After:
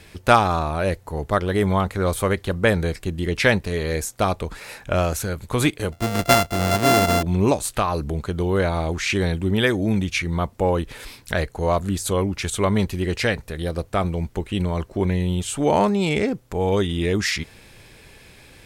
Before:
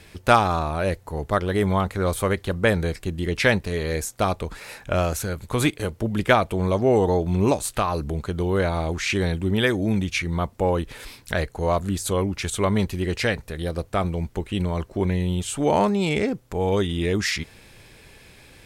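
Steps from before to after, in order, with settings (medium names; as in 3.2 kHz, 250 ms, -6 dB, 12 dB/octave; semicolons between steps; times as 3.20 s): 5.92–7.23 s: sorted samples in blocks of 64 samples; trim +1.5 dB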